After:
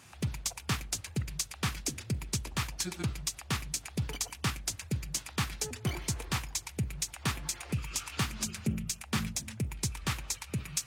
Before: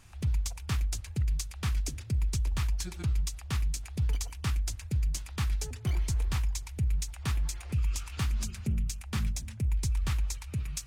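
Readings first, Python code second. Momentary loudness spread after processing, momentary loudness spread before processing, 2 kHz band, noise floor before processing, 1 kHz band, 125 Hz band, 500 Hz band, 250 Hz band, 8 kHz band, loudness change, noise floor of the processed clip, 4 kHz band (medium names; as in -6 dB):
3 LU, 3 LU, +5.0 dB, -45 dBFS, +5.0 dB, -4.5 dB, +5.0 dB, +3.0 dB, +5.0 dB, -2.0 dB, -51 dBFS, +5.0 dB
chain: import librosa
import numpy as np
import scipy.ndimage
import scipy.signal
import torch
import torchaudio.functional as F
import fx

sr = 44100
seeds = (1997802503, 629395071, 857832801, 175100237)

y = scipy.signal.sosfilt(scipy.signal.butter(2, 160.0, 'highpass', fs=sr, output='sos'), x)
y = y * librosa.db_to_amplitude(5.0)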